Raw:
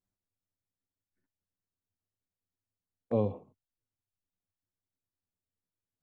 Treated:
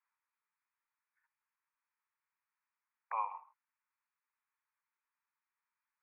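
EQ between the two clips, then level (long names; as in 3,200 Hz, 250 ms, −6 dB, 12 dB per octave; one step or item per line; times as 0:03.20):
Chebyshev band-pass filter 900–2,500 Hz, order 4
high-frequency loss of the air 450 metres
+15.5 dB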